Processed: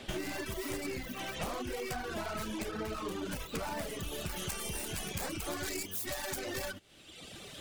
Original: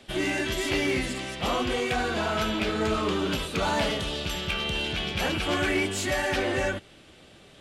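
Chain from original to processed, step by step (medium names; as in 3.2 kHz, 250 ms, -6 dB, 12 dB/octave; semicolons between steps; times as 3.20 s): tracing distortion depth 0.42 ms; reverb removal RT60 1 s; treble shelf 4.3 kHz -2 dB, from 4.36 s +3.5 dB, from 5.66 s +10.5 dB; compression 10:1, threshold -40 dBFS, peak gain reduction 19.5 dB; trim +5 dB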